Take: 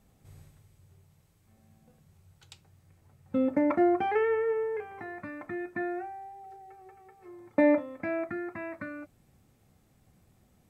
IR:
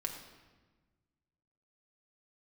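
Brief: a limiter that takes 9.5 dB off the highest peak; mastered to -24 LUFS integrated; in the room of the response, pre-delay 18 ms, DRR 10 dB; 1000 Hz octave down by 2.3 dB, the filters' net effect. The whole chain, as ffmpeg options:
-filter_complex "[0:a]equalizer=f=1k:t=o:g=-3.5,alimiter=limit=-22dB:level=0:latency=1,asplit=2[a][b];[1:a]atrim=start_sample=2205,adelay=18[c];[b][c]afir=irnorm=-1:irlink=0,volume=-10.5dB[d];[a][d]amix=inputs=2:normalize=0,volume=8.5dB"

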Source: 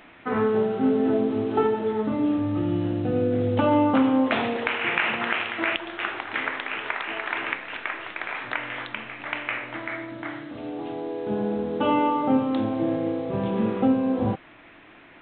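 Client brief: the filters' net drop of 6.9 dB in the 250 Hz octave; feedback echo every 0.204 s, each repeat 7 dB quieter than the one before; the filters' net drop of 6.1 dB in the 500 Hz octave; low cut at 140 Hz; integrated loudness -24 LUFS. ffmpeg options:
-af "highpass=140,equalizer=f=250:t=o:g=-6,equalizer=f=500:t=o:g=-5.5,aecho=1:1:204|408|612|816|1020:0.447|0.201|0.0905|0.0407|0.0183,volume=4.5dB"

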